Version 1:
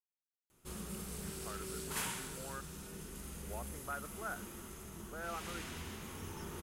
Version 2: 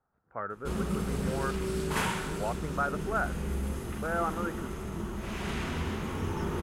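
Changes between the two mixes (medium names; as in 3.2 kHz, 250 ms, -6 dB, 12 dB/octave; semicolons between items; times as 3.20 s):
speech: entry -1.10 s; master: remove pre-emphasis filter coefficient 0.8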